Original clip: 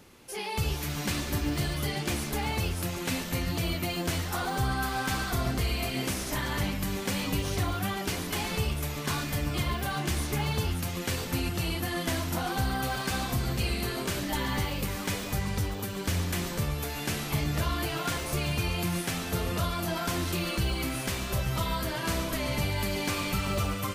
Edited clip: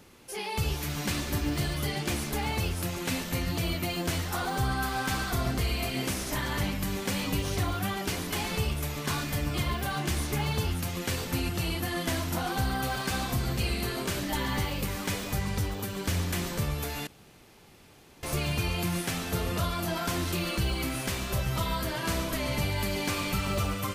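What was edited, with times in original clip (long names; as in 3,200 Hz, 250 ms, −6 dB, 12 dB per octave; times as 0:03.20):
0:17.07–0:18.23: fill with room tone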